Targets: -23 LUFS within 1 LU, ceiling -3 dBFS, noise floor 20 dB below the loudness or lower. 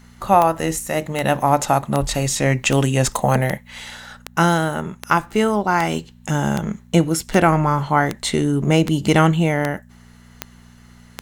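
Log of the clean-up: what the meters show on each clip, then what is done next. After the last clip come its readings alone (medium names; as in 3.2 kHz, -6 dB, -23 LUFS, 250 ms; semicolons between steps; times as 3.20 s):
clicks found 15; hum 60 Hz; highest harmonic 240 Hz; hum level -44 dBFS; loudness -19.0 LUFS; peak level -1.5 dBFS; loudness target -23.0 LUFS
-> de-click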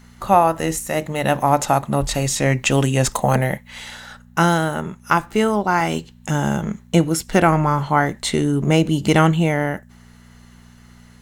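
clicks found 0; hum 60 Hz; highest harmonic 240 Hz; hum level -44 dBFS
-> de-hum 60 Hz, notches 4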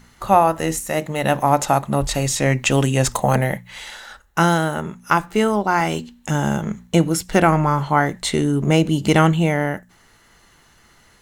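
hum not found; loudness -19.0 LUFS; peak level -1.5 dBFS; loudness target -23.0 LUFS
-> trim -4 dB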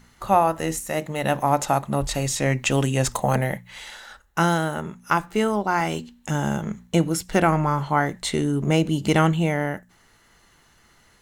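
loudness -23.0 LUFS; peak level -5.5 dBFS; noise floor -58 dBFS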